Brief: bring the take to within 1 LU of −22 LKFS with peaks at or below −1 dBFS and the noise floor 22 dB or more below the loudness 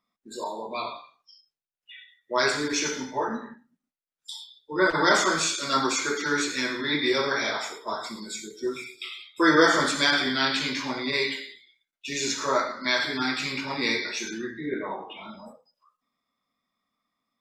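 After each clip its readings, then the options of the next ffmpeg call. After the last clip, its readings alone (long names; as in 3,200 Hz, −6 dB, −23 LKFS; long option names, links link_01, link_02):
integrated loudness −25.5 LKFS; sample peak −5.5 dBFS; target loudness −22.0 LKFS
→ -af "volume=3.5dB"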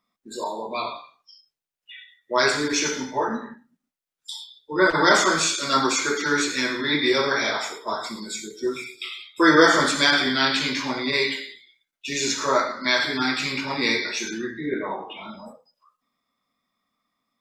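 integrated loudness −22.0 LKFS; sample peak −2.0 dBFS; background noise floor −85 dBFS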